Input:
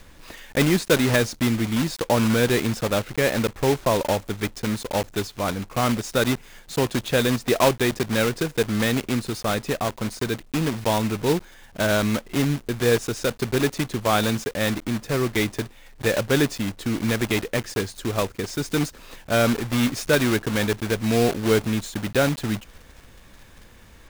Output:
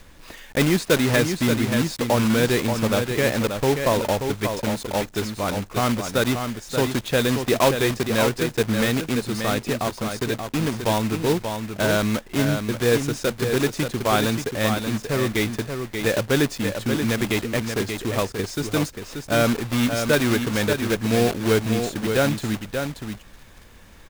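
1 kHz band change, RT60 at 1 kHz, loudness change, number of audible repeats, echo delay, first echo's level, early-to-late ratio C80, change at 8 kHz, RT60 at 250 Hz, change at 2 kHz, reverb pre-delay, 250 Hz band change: +1.0 dB, none, +1.0 dB, 1, 0.582 s, -6.5 dB, none, +1.0 dB, none, +1.0 dB, none, +1.0 dB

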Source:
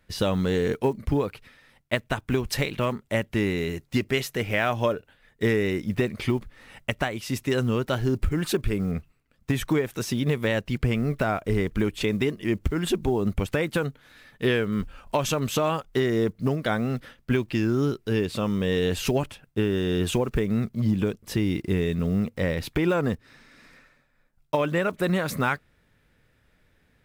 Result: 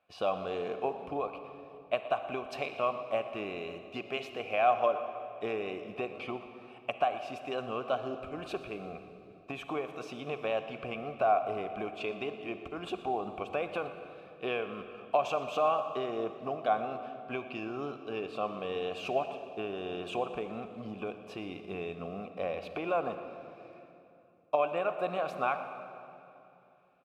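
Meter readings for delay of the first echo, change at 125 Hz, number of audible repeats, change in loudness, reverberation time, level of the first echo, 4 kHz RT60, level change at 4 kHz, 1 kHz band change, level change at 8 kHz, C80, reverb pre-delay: 0.118 s, -22.5 dB, 1, -8.5 dB, 2.9 s, -17.0 dB, 2.2 s, -11.0 dB, +1.0 dB, under -20 dB, 9.0 dB, 36 ms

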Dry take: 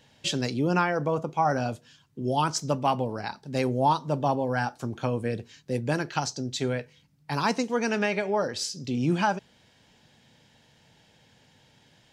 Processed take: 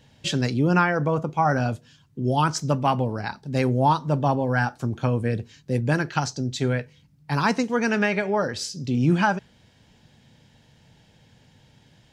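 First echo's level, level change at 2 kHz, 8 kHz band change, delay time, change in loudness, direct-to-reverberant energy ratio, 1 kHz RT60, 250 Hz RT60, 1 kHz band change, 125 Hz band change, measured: none, +5.5 dB, 0.0 dB, none, +4.0 dB, none, none, none, +2.5 dB, +7.0 dB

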